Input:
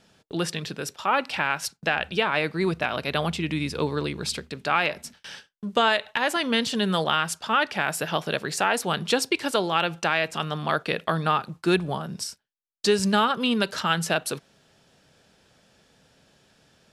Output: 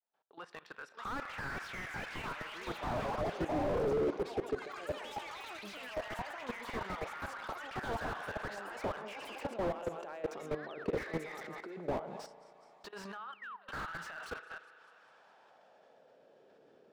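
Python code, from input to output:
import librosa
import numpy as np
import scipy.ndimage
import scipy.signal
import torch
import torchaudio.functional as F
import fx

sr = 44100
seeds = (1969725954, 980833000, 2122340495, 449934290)

y = fx.fade_in_head(x, sr, length_s=2.02)
y = fx.low_shelf(y, sr, hz=240.0, db=-10.0)
y = fx.echo_thinned(y, sr, ms=203, feedback_pct=48, hz=180.0, wet_db=-22)
y = fx.spec_paint(y, sr, seeds[0], shape='fall', start_s=13.32, length_s=0.36, low_hz=500.0, high_hz=3300.0, level_db=-18.0)
y = fx.over_compress(y, sr, threshold_db=-29.0, ratio=-0.5)
y = fx.filter_lfo_bandpass(y, sr, shape='sine', hz=0.16, low_hz=390.0, high_hz=1500.0, q=2.2)
y = fx.echo_pitch(y, sr, ms=690, semitones=5, count=3, db_per_echo=-3.0)
y = 10.0 ** (-24.5 / 20.0) * np.tanh(y / 10.0 ** (-24.5 / 20.0))
y = fx.level_steps(y, sr, step_db=18)
y = fx.rev_spring(y, sr, rt60_s=2.4, pass_ms=(35,), chirp_ms=55, drr_db=18.0)
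y = fx.slew_limit(y, sr, full_power_hz=5.3)
y = y * librosa.db_to_amplitude(9.0)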